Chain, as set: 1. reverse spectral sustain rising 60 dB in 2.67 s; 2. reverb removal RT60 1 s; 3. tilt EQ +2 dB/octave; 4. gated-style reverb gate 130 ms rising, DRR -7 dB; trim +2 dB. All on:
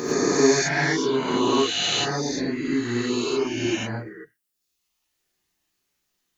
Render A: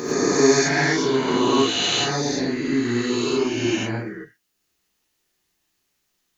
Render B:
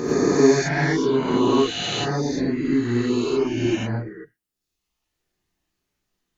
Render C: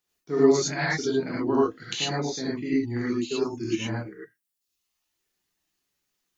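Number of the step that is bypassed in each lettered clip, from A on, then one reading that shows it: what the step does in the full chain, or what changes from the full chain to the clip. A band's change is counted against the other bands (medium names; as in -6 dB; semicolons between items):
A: 2, loudness change +2.0 LU; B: 3, 4 kHz band -6.0 dB; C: 1, 4 kHz band -5.5 dB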